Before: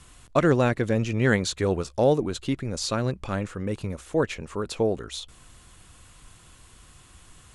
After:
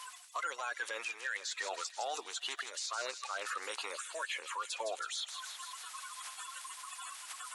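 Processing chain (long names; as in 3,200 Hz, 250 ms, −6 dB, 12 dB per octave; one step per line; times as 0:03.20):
spectral magnitudes quantised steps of 30 dB
high-pass filter 860 Hz 24 dB per octave
reversed playback
downward compressor 8 to 1, threshold −42 dBFS, peak gain reduction 21.5 dB
reversed playback
brickwall limiter −36.5 dBFS, peak gain reduction 6.5 dB
on a send: delay with a high-pass on its return 160 ms, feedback 65%, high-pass 3,600 Hz, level −6.5 dB
on the sum: multiband upward and downward compressor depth 40%
level +8.5 dB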